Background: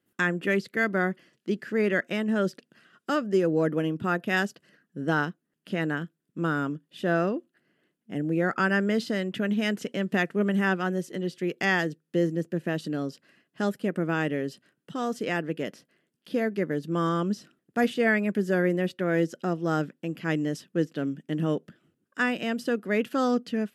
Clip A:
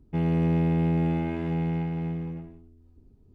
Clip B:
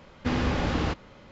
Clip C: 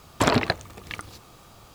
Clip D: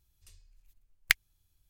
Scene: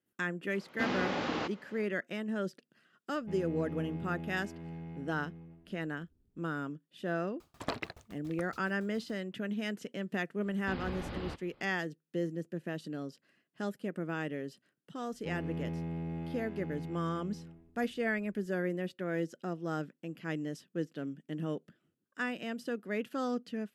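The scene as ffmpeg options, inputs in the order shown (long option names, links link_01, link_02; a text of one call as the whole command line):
ffmpeg -i bed.wav -i cue0.wav -i cue1.wav -i cue2.wav -filter_complex "[2:a]asplit=2[link_01][link_02];[1:a]asplit=2[link_03][link_04];[0:a]volume=-9.5dB[link_05];[link_01]highpass=250,lowpass=6500[link_06];[3:a]aeval=exprs='val(0)*pow(10,-29*if(lt(mod(7.1*n/s,1),2*abs(7.1)/1000),1-mod(7.1*n/s,1)/(2*abs(7.1)/1000),(mod(7.1*n/s,1)-2*abs(7.1)/1000)/(1-2*abs(7.1)/1000))/20)':channel_layout=same[link_07];[link_02]aresample=11025,aresample=44100[link_08];[link_06]atrim=end=1.31,asetpts=PTS-STARTPTS,volume=-4dB,afade=type=in:duration=0.004:curve=hsin,afade=type=out:start_time=1.306:duration=0.004:curve=hsin,adelay=540[link_09];[link_03]atrim=end=3.34,asetpts=PTS-STARTPTS,volume=-16.5dB,afade=type=in:duration=0.004:curve=hsin,afade=type=out:start_time=3.336:duration=0.004:curve=hsin,adelay=3140[link_10];[link_07]atrim=end=1.74,asetpts=PTS-STARTPTS,volume=-7.5dB,afade=type=in:duration=0.004:curve=hsin,afade=type=out:start_time=1.736:duration=0.004:curve=hsin,adelay=7400[link_11];[link_08]atrim=end=1.31,asetpts=PTS-STARTPTS,volume=-14dB,afade=type=in:duration=0.004:curve=hsin,afade=type=out:start_time=1.306:duration=0.004:curve=hsin,adelay=459522S[link_12];[link_04]atrim=end=3.34,asetpts=PTS-STARTPTS,volume=-14dB,afade=type=in:duration=0.004:curve=hsin,afade=type=out:start_time=3.336:duration=0.004:curve=hsin,adelay=15120[link_13];[link_05][link_09][link_10][link_11][link_12][link_13]amix=inputs=6:normalize=0" out.wav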